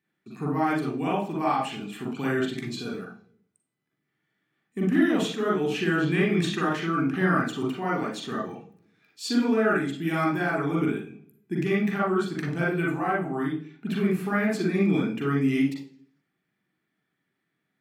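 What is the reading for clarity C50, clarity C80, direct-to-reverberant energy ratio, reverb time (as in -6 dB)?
3.0 dB, 10.5 dB, -3.5 dB, 0.45 s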